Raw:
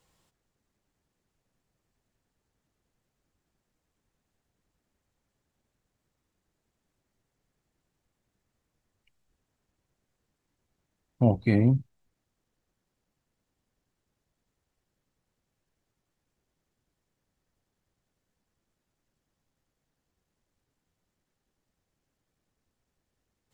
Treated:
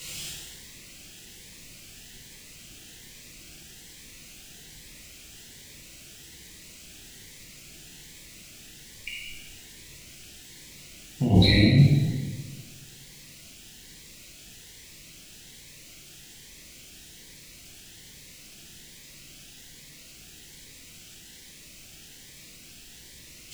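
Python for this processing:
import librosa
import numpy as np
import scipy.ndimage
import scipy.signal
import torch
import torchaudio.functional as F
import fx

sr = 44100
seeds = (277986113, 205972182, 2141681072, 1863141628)

y = fx.high_shelf_res(x, sr, hz=1700.0, db=12.5, q=1.5)
y = fx.over_compress(y, sr, threshold_db=-33.0, ratio=-1.0)
y = fx.rev_plate(y, sr, seeds[0], rt60_s=1.7, hf_ratio=0.8, predelay_ms=0, drr_db=-6.5)
y = fx.notch_cascade(y, sr, direction='rising', hz=1.2)
y = y * 10.0 ** (8.5 / 20.0)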